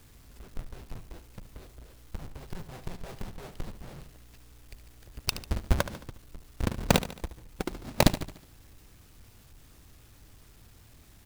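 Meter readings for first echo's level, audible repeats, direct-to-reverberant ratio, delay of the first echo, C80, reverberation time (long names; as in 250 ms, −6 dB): −13.0 dB, 4, no reverb audible, 73 ms, no reverb audible, no reverb audible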